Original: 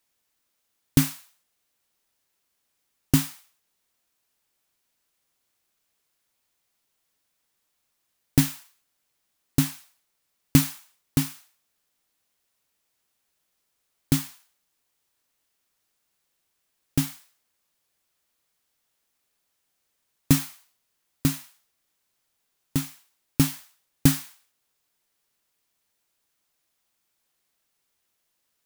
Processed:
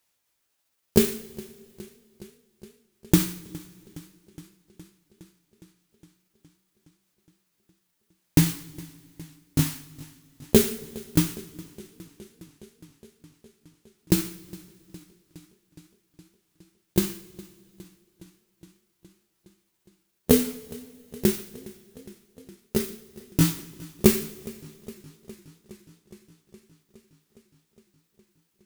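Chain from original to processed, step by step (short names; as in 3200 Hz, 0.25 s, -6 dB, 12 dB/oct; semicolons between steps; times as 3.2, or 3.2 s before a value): repeated pitch sweeps +9.5 st, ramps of 1.363 s; two-slope reverb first 0.47 s, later 2.7 s, from -18 dB, DRR 8 dB; warbling echo 0.414 s, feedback 75%, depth 74 cents, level -21.5 dB; gain +2 dB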